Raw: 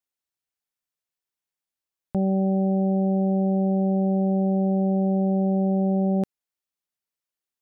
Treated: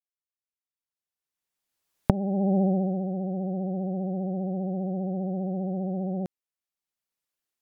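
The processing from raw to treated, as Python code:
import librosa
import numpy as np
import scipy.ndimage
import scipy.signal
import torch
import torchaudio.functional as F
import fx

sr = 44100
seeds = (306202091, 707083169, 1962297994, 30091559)

y = fx.doppler_pass(x, sr, speed_mps=8, closest_m=1.6, pass_at_s=2.59)
y = fx.recorder_agc(y, sr, target_db=-25.0, rise_db_per_s=12.0, max_gain_db=30)
y = fx.vibrato(y, sr, rate_hz=15.0, depth_cents=59.0)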